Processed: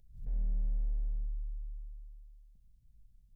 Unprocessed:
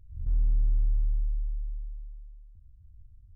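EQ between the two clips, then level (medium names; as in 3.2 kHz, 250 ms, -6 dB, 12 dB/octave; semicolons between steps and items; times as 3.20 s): bass shelf 150 Hz -11 dB; static phaser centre 320 Hz, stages 6; +4.5 dB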